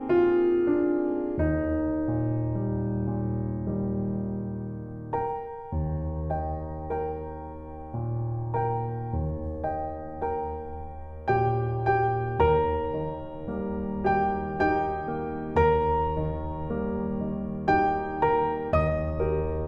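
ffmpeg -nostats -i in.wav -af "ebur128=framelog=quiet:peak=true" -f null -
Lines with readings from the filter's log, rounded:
Integrated loudness:
  I:         -27.9 LUFS
  Threshold: -38.0 LUFS
Loudness range:
  LRA:         5.5 LU
  Threshold: -48.6 LUFS
  LRA low:   -32.0 LUFS
  LRA high:  -26.5 LUFS
True peak:
  Peak:       -9.9 dBFS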